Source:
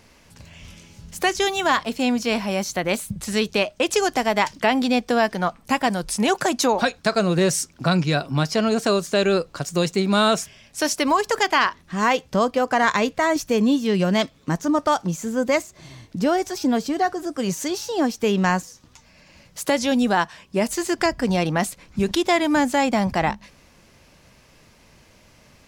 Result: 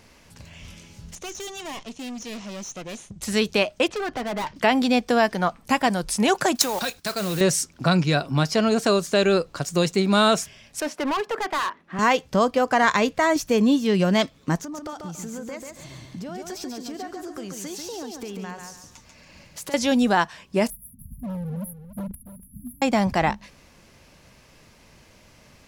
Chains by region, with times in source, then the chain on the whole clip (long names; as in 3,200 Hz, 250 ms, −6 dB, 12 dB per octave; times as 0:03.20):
0:01.15–0:03.22: lower of the sound and its delayed copy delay 0.31 ms + transistor ladder low-pass 7,800 Hz, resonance 50% + hard clipping −31.5 dBFS
0:03.88–0:04.56: low-pass filter 2,500 Hz + gain into a clipping stage and back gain 25.5 dB
0:06.55–0:07.41: high-shelf EQ 2,600 Hz +10 dB + output level in coarse steps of 13 dB + noise that follows the level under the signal 11 dB
0:10.80–0:11.99: three-way crossover with the lows and the highs turned down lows −22 dB, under 180 Hz, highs −18 dB, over 2,800 Hz + hard clipping −22 dBFS
0:14.58–0:19.74: downward compressor 8 to 1, threshold −32 dBFS + repeating echo 140 ms, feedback 30%, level −5 dB
0:20.70–0:22.82: linear-phase brick-wall band-stop 240–10,000 Hz + hard clipping −29 dBFS + single-tap delay 288 ms −12.5 dB
whole clip: no processing